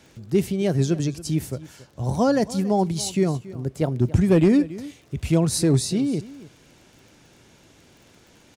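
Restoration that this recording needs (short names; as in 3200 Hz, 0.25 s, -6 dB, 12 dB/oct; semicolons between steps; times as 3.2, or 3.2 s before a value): clip repair -10 dBFS; de-click; inverse comb 0.279 s -18 dB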